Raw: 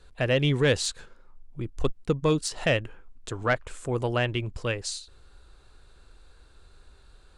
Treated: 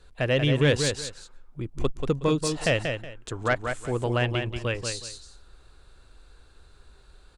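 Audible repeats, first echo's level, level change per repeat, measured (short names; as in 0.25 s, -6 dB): 2, -6.0 dB, -13.0 dB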